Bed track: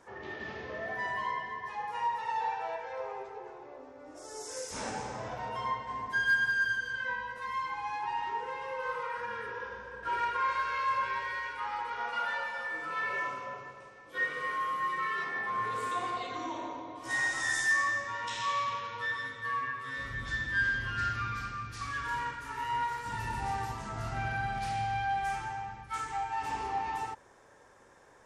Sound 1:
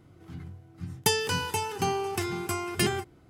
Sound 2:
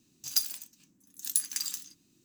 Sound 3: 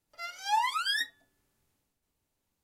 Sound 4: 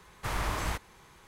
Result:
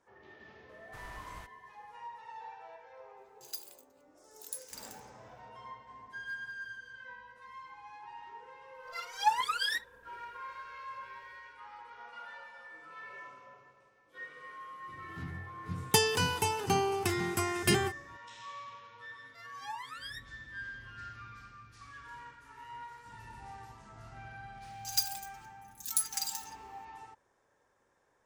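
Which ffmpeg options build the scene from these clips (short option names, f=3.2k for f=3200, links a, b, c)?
-filter_complex "[2:a]asplit=2[a][b];[3:a]asplit=2[c][d];[0:a]volume=-14dB[e];[a]equalizer=f=5.7k:w=5.6:g=-8[f];[c]aphaser=in_gain=1:out_gain=1:delay=2.9:decay=0.62:speed=1.5:type=triangular[g];[b]aecho=1:1:4.8:0.86[h];[4:a]atrim=end=1.27,asetpts=PTS-STARTPTS,volume=-17.5dB,afade=t=in:d=0.004:c=hsin,afade=t=out:st=1.266:d=0.004:c=hsin,adelay=690[i];[f]atrim=end=2.24,asetpts=PTS-STARTPTS,volume=-13.5dB,afade=t=in:d=0.004:c=hsin,afade=t=out:st=2.236:d=0.004:c=hsin,adelay=139797S[j];[g]atrim=end=2.63,asetpts=PTS-STARTPTS,volume=-4dB,afade=t=in:d=0.004:c=hsin,afade=t=out:st=2.626:d=0.004:c=hsin,adelay=385434S[k];[1:a]atrim=end=3.29,asetpts=PTS-STARTPTS,volume=-1dB,afade=t=in:d=0.004:c=hsin,afade=t=out:st=3.286:d=0.004:c=hsin,adelay=14880[l];[d]atrim=end=2.63,asetpts=PTS-STARTPTS,volume=-14.5dB,afade=t=in:d=0.004:c=hsin,afade=t=out:st=2.626:d=0.004:c=hsin,adelay=19160[m];[h]atrim=end=2.24,asetpts=PTS-STARTPTS,volume=-5dB,afade=t=in:d=0.004:c=hsin,afade=t=out:st=2.236:d=0.004:c=hsin,adelay=24610[n];[e][i][j][k][l][m][n]amix=inputs=7:normalize=0"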